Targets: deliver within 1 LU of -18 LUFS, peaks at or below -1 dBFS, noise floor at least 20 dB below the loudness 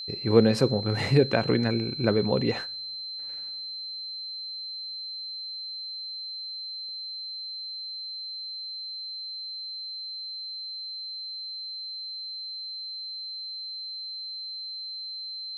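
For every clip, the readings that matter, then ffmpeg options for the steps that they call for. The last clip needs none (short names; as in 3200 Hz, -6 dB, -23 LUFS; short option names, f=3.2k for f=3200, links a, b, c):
steady tone 4100 Hz; tone level -34 dBFS; loudness -30.0 LUFS; peak -5.0 dBFS; loudness target -18.0 LUFS
-> -af "bandreject=f=4.1k:w=30"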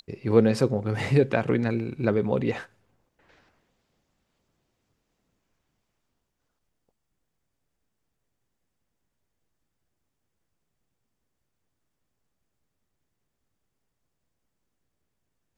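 steady tone none; loudness -24.5 LUFS; peak -4.5 dBFS; loudness target -18.0 LUFS
-> -af "volume=6.5dB,alimiter=limit=-1dB:level=0:latency=1"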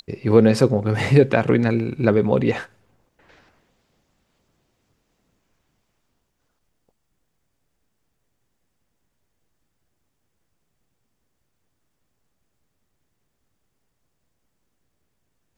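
loudness -18.5 LUFS; peak -1.0 dBFS; noise floor -73 dBFS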